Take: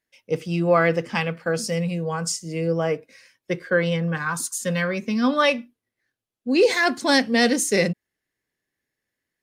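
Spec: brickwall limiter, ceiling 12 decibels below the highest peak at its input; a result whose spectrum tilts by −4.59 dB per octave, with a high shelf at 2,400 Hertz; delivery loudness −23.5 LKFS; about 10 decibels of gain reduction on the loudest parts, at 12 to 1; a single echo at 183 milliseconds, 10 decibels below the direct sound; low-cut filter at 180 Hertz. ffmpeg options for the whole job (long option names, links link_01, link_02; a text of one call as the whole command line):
ffmpeg -i in.wav -af "highpass=180,highshelf=frequency=2400:gain=-4.5,acompressor=threshold=-23dB:ratio=12,alimiter=level_in=1.5dB:limit=-24dB:level=0:latency=1,volume=-1.5dB,aecho=1:1:183:0.316,volume=10.5dB" out.wav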